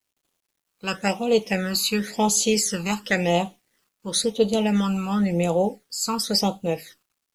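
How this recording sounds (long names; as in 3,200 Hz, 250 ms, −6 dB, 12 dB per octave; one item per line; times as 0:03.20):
phaser sweep stages 12, 0.95 Hz, lowest notch 580–1,800 Hz
a quantiser's noise floor 12 bits, dither none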